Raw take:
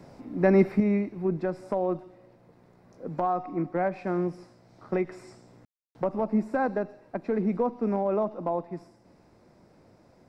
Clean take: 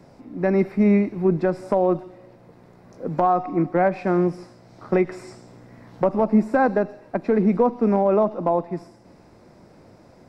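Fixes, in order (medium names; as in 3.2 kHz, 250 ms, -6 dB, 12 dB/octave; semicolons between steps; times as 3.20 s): room tone fill 5.65–5.95 s; gain correction +8 dB, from 0.80 s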